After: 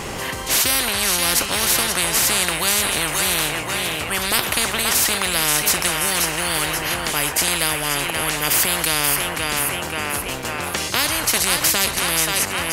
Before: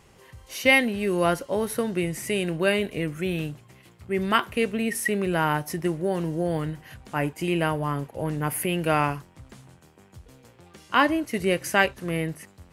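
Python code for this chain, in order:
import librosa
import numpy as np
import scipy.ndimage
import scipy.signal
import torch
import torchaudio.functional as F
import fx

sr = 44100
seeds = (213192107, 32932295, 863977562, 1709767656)

y = fx.echo_thinned(x, sr, ms=530, feedback_pct=45, hz=420.0, wet_db=-12)
y = fx.spectral_comp(y, sr, ratio=10.0)
y = y * librosa.db_to_amplitude(3.0)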